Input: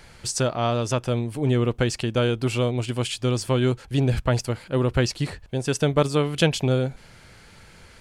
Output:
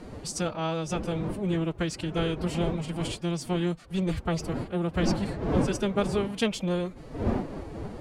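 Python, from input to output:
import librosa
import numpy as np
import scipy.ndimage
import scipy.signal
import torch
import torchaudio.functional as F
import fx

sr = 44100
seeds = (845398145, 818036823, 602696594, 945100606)

y = fx.dmg_wind(x, sr, seeds[0], corner_hz=370.0, level_db=-27.0)
y = fx.pitch_keep_formants(y, sr, semitones=5.5)
y = y * librosa.db_to_amplitude(-6.5)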